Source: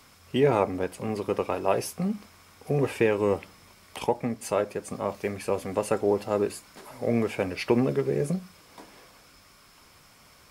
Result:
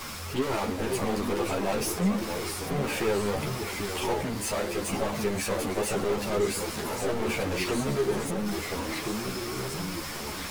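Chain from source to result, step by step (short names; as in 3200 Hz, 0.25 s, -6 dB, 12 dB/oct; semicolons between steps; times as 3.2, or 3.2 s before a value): power-law curve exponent 0.35; echoes that change speed 0.421 s, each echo -2 st, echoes 3, each echo -6 dB; ensemble effect; gain -8 dB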